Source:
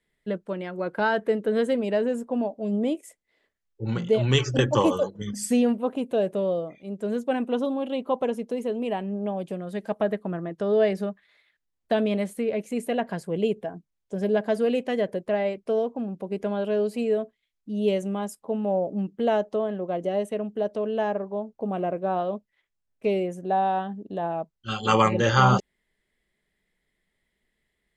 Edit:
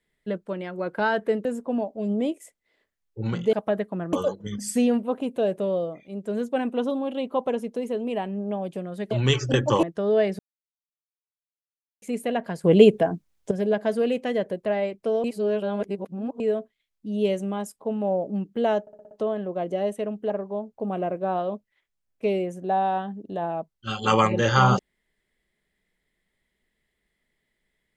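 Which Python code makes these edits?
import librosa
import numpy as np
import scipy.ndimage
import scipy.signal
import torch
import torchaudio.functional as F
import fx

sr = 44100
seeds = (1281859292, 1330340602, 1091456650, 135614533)

y = fx.edit(x, sr, fx.cut(start_s=1.45, length_s=0.63),
    fx.swap(start_s=4.16, length_s=0.72, other_s=9.86, other_length_s=0.6),
    fx.silence(start_s=11.02, length_s=1.63),
    fx.clip_gain(start_s=13.27, length_s=0.87, db=11.0),
    fx.reverse_span(start_s=15.87, length_s=1.16),
    fx.stutter(start_s=19.44, slice_s=0.06, count=6),
    fx.cut(start_s=20.63, length_s=0.48), tone=tone)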